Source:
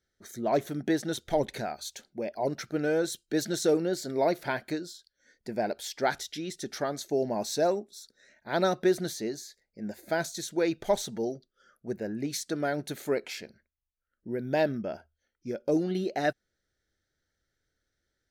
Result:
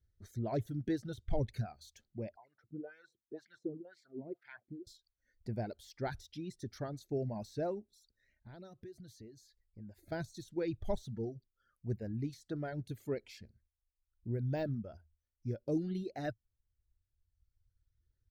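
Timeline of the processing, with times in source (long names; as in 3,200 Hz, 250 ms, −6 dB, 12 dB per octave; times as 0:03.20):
0:02.36–0:04.87: LFO wah 2 Hz 210–2,200 Hz, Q 3.5
0:07.94–0:10.12: downward compressor 2.5 to 1, threshold −48 dBFS
whole clip: reverb reduction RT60 1.6 s; de-essing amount 95%; drawn EQ curve 110 Hz 0 dB, 160 Hz −15 dB, 760 Hz −26 dB, 2,900 Hz −27 dB, 4,400 Hz −24 dB, 6,700 Hz −27 dB; level +13 dB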